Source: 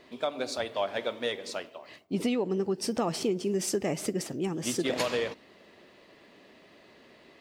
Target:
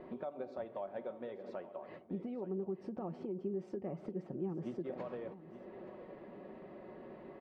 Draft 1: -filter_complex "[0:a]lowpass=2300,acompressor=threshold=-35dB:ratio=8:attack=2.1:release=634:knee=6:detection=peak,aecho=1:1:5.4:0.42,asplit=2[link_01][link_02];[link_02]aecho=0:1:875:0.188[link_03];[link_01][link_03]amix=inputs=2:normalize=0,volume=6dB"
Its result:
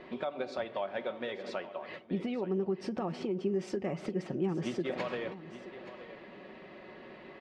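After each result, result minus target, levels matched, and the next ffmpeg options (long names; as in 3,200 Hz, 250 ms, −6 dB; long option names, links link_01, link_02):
2,000 Hz band +8.0 dB; downward compressor: peak gain reduction −7 dB
-filter_complex "[0:a]lowpass=910,acompressor=threshold=-35dB:ratio=8:attack=2.1:release=634:knee=6:detection=peak,aecho=1:1:5.4:0.42,asplit=2[link_01][link_02];[link_02]aecho=0:1:875:0.188[link_03];[link_01][link_03]amix=inputs=2:normalize=0,volume=6dB"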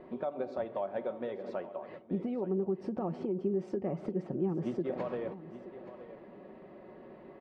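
downward compressor: peak gain reduction −7 dB
-filter_complex "[0:a]lowpass=910,acompressor=threshold=-43dB:ratio=8:attack=2.1:release=634:knee=6:detection=peak,aecho=1:1:5.4:0.42,asplit=2[link_01][link_02];[link_02]aecho=0:1:875:0.188[link_03];[link_01][link_03]amix=inputs=2:normalize=0,volume=6dB"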